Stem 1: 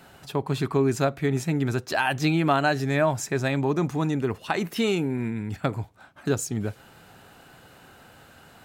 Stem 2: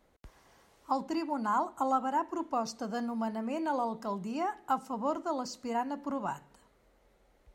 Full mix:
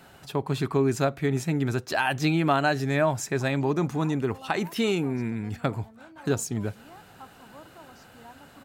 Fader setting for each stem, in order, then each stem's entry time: −1.0, −16.5 decibels; 0.00, 2.50 seconds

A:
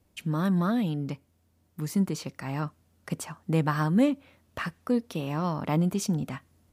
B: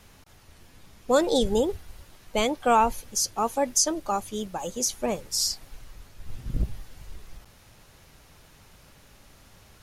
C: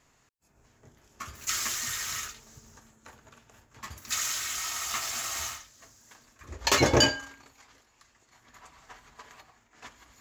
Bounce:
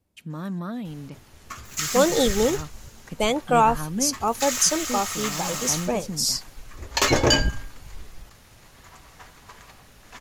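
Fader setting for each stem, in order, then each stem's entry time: −6.0, +2.0, +2.5 decibels; 0.00, 0.85, 0.30 seconds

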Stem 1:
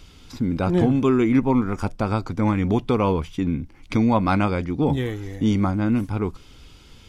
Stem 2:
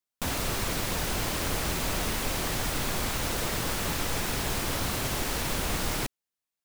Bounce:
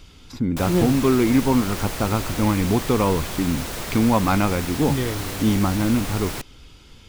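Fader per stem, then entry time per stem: +0.5, −0.5 decibels; 0.00, 0.35 seconds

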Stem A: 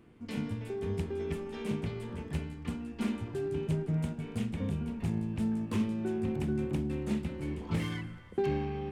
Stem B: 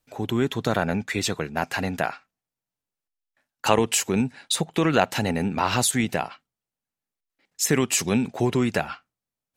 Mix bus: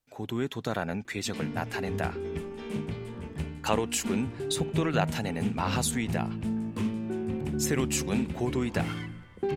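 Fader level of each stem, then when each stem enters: +0.5, −7.5 decibels; 1.05, 0.00 seconds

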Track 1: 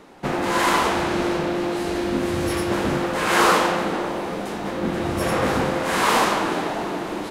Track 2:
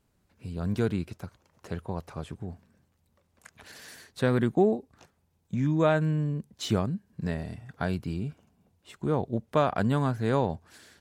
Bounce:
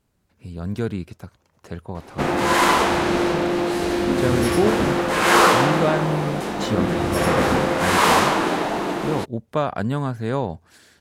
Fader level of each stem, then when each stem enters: +2.5, +2.0 decibels; 1.95, 0.00 seconds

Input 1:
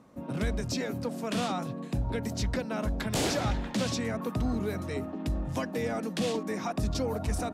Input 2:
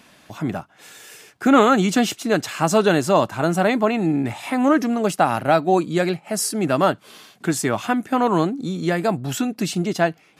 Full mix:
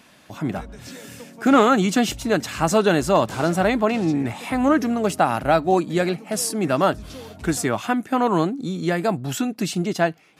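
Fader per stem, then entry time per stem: −8.0, −1.0 decibels; 0.15, 0.00 seconds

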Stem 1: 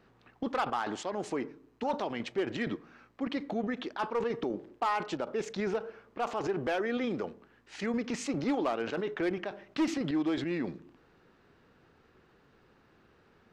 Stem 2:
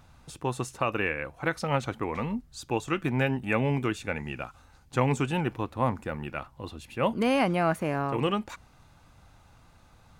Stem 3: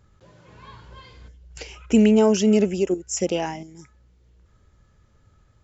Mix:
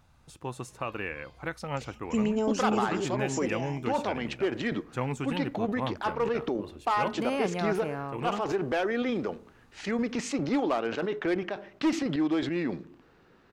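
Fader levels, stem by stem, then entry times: +3.0, −6.5, −11.5 decibels; 2.05, 0.00, 0.20 seconds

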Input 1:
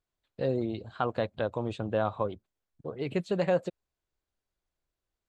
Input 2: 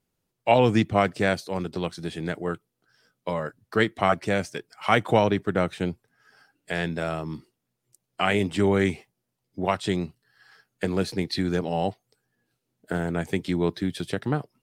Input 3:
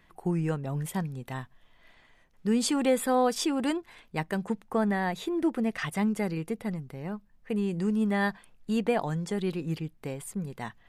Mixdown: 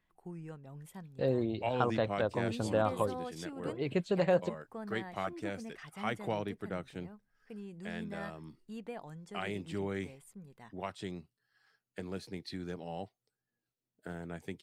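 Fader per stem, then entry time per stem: −1.5, −15.5, −17.0 decibels; 0.80, 1.15, 0.00 seconds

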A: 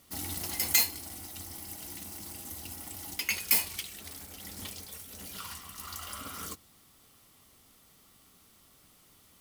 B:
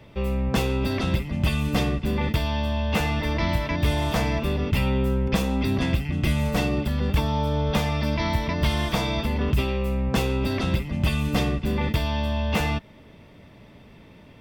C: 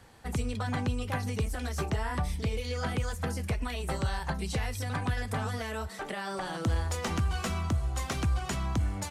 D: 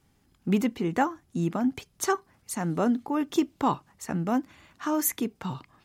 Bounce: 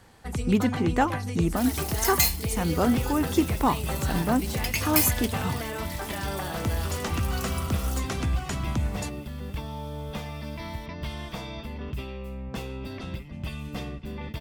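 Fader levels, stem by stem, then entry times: +1.5, −11.5, +1.0, +1.5 decibels; 1.45, 2.40, 0.00, 0.00 seconds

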